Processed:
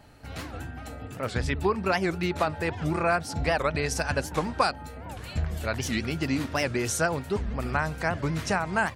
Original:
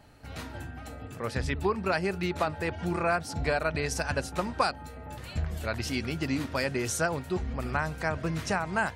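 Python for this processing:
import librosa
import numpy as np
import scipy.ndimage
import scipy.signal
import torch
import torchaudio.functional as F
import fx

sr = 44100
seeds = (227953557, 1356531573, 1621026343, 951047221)

y = fx.record_warp(x, sr, rpm=78.0, depth_cents=250.0)
y = y * librosa.db_to_amplitude(2.5)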